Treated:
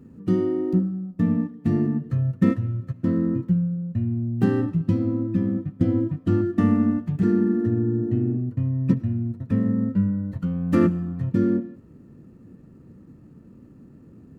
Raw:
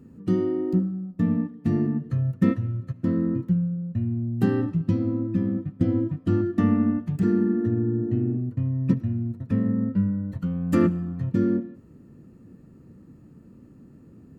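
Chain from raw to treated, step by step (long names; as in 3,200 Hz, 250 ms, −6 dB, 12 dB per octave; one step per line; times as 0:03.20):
running median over 9 samples
level +1.5 dB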